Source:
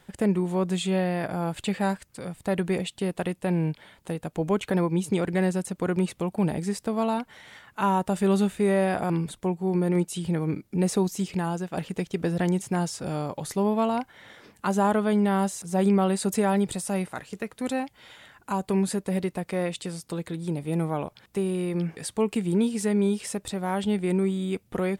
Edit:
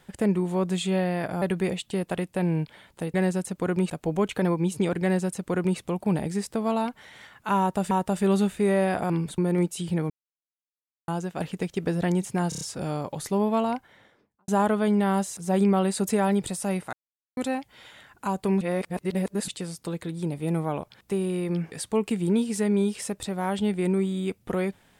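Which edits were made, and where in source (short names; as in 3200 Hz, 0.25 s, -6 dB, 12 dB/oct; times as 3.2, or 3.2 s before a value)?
1.42–2.5 cut
5.34–6.1 copy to 4.22
7.91–8.23 loop, 2 plays
9.38–9.75 cut
10.47–11.45 mute
12.86 stutter 0.03 s, 5 plays
13.85–14.73 studio fade out
17.18–17.62 mute
18.86–19.73 reverse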